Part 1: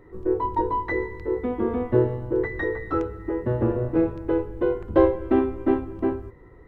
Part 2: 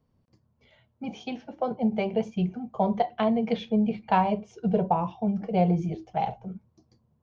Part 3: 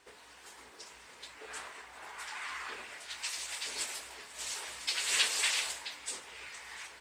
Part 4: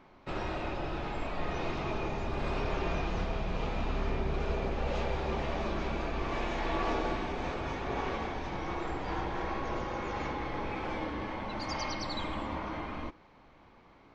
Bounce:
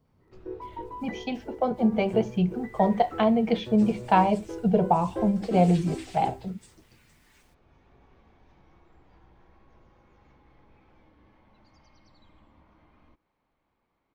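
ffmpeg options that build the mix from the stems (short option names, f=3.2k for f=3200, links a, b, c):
-filter_complex "[0:a]adelay=200,volume=-14.5dB[a];[1:a]volume=2.5dB,asplit=2[b][c];[2:a]aecho=1:1:6.8:0.52,acrusher=bits=7:mix=0:aa=0.000001,adelay=550,volume=-18.5dB[d];[3:a]acrossover=split=220[e][f];[f]acompressor=threshold=-42dB:ratio=6[g];[e][g]amix=inputs=2:normalize=0,adelay=50,volume=-19dB[h];[c]apad=whole_len=626213[i];[h][i]sidechaincompress=threshold=-43dB:ratio=4:attack=16:release=1090[j];[a][b][d][j]amix=inputs=4:normalize=0"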